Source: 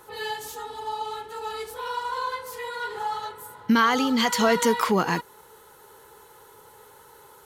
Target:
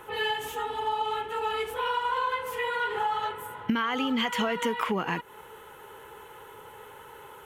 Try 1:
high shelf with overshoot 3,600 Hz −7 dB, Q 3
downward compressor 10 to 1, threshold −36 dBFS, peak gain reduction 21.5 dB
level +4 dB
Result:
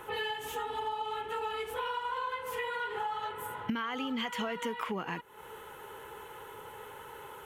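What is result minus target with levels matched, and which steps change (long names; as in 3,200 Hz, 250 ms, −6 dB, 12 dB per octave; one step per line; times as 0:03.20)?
downward compressor: peak gain reduction +7 dB
change: downward compressor 10 to 1, threshold −28 dBFS, peak gain reduction 14 dB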